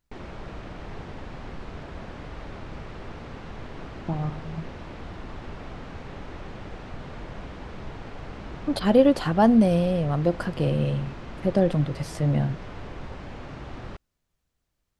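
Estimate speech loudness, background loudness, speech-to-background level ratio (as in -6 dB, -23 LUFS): -23.5 LUFS, -40.0 LUFS, 16.5 dB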